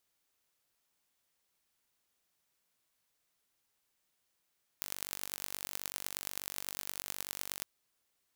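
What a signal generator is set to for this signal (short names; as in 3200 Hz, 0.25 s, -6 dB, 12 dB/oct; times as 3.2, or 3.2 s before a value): pulse train 48.2/s, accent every 5, -8.5 dBFS 2.82 s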